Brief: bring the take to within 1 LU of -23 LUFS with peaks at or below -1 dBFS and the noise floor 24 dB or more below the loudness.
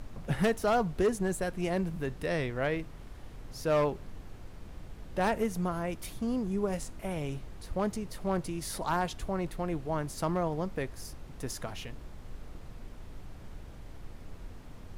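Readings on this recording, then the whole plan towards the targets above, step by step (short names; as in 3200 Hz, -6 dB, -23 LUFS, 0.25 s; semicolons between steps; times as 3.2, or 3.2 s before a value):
clipped 0.4%; flat tops at -21.0 dBFS; noise floor -47 dBFS; noise floor target -57 dBFS; loudness -33.0 LUFS; peak -21.0 dBFS; loudness target -23.0 LUFS
-> clip repair -21 dBFS; noise print and reduce 10 dB; gain +10 dB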